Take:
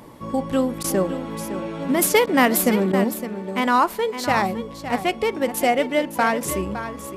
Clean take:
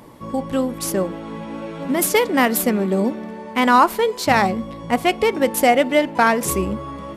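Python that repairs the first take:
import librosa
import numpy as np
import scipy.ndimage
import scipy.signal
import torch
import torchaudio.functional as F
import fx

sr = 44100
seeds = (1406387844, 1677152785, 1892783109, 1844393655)

y = fx.fix_interpolate(x, sr, at_s=(0.83, 2.26, 2.92), length_ms=10.0)
y = fx.fix_echo_inverse(y, sr, delay_ms=562, level_db=-11.0)
y = fx.fix_level(y, sr, at_s=3.04, step_db=4.5)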